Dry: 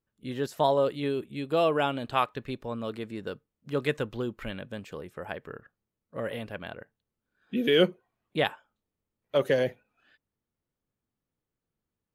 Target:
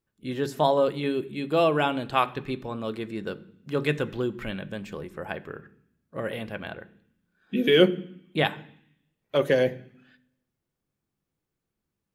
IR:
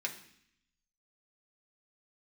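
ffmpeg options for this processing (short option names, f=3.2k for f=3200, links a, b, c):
-filter_complex "[0:a]asplit=2[a][b];[1:a]atrim=start_sample=2205,lowshelf=f=280:g=12[c];[b][c]afir=irnorm=-1:irlink=0,volume=-7.5dB[d];[a][d]amix=inputs=2:normalize=0"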